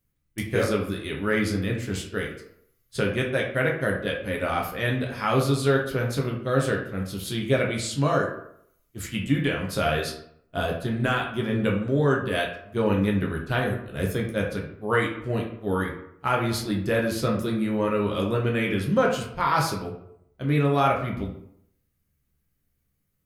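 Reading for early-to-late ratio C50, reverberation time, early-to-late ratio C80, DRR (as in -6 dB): 5.5 dB, 0.75 s, 9.5 dB, -1.0 dB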